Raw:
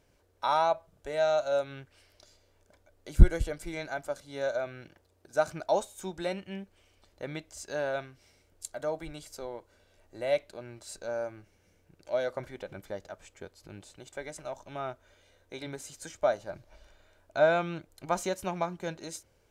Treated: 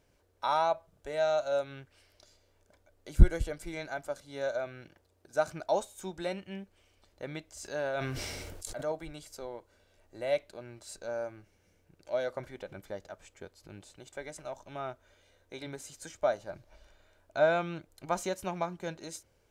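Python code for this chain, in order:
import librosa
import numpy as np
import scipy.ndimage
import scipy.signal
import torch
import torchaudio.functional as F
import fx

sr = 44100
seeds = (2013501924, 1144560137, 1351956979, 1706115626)

y = fx.sustainer(x, sr, db_per_s=22.0, at=(7.52, 8.92))
y = y * librosa.db_to_amplitude(-2.0)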